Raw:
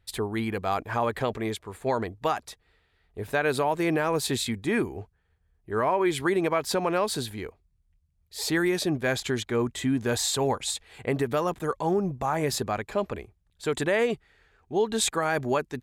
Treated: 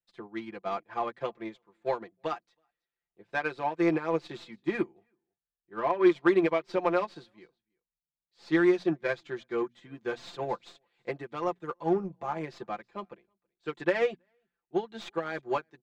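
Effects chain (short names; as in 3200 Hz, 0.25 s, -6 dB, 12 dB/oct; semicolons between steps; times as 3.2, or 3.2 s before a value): tracing distortion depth 0.13 ms; three-band isolator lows -13 dB, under 160 Hz, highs -23 dB, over 6200 Hz; notches 60/120/180/240 Hz; comb 5.8 ms, depth 79%; in parallel at -7 dB: soft clip -25.5 dBFS, distortion -8 dB; on the sum: high shelf 10000 Hz -11.5 dB; on a send: echo 0.324 s -22.5 dB; on the sum: upward expander 2.5:1, over -35 dBFS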